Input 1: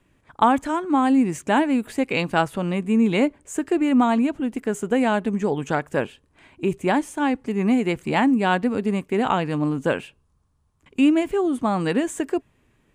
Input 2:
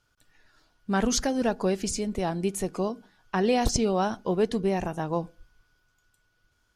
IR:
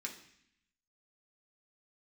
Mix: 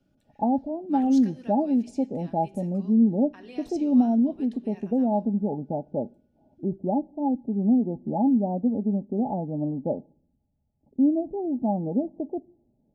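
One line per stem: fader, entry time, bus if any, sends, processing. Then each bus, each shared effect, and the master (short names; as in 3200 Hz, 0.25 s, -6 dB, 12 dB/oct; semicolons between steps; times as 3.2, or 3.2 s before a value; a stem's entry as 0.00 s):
-0.5 dB, 0.00 s, send -17.5 dB, rippled Chebyshev low-pass 860 Hz, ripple 9 dB
-14.0 dB, 0.00 s, send -13 dB, auto duck -12 dB, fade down 1.60 s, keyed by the first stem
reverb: on, RT60 0.65 s, pre-delay 3 ms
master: bell 2700 Hz +6.5 dB 1.1 oct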